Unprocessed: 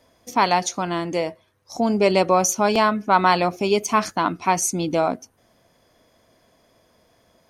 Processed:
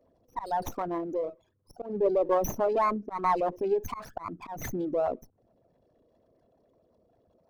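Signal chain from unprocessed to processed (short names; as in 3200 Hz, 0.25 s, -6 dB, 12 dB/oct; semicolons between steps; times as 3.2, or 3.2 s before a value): formant sharpening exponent 3; auto swell 0.216 s; running maximum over 5 samples; gain -7 dB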